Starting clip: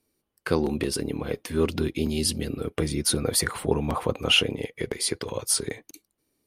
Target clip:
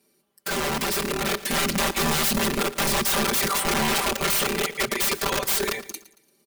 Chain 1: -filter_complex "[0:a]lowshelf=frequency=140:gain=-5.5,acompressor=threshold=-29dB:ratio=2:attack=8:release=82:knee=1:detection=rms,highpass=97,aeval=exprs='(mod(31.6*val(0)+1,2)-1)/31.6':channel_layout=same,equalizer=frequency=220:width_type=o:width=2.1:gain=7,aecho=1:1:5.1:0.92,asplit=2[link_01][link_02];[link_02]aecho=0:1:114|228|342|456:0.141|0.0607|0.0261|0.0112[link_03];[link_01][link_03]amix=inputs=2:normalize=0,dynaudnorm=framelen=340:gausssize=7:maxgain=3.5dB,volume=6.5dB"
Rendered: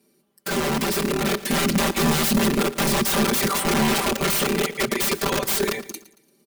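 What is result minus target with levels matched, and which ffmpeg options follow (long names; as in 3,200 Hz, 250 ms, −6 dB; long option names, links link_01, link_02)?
250 Hz band +5.0 dB
-filter_complex "[0:a]lowshelf=frequency=140:gain=-5.5,acompressor=threshold=-29dB:ratio=2:attack=8:release=82:knee=1:detection=rms,highpass=97,aeval=exprs='(mod(31.6*val(0)+1,2)-1)/31.6':channel_layout=same,aecho=1:1:5.1:0.92,asplit=2[link_01][link_02];[link_02]aecho=0:1:114|228|342|456:0.141|0.0607|0.0261|0.0112[link_03];[link_01][link_03]amix=inputs=2:normalize=0,dynaudnorm=framelen=340:gausssize=7:maxgain=3.5dB,volume=6.5dB"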